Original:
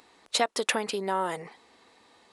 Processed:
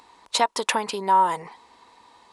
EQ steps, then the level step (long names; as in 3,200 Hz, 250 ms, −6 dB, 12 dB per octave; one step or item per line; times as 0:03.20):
low-shelf EQ 75 Hz +11 dB
parametric band 970 Hz +14.5 dB 0.35 octaves
parametric band 5,400 Hz +3 dB 2.4 octaves
0.0 dB